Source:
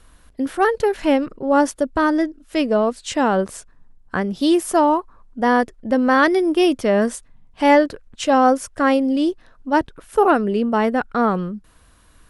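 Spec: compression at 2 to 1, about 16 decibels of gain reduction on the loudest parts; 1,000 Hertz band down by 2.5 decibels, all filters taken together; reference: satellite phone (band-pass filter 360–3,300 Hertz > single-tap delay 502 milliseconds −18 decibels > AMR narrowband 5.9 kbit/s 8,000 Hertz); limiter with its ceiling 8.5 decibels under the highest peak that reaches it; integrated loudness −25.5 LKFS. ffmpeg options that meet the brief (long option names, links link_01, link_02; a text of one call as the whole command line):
ffmpeg -i in.wav -af "equalizer=frequency=1000:width_type=o:gain=-3,acompressor=threshold=-42dB:ratio=2,alimiter=level_in=4.5dB:limit=-24dB:level=0:latency=1,volume=-4.5dB,highpass=360,lowpass=3300,aecho=1:1:502:0.126,volume=16dB" -ar 8000 -c:a libopencore_amrnb -b:a 5900 out.amr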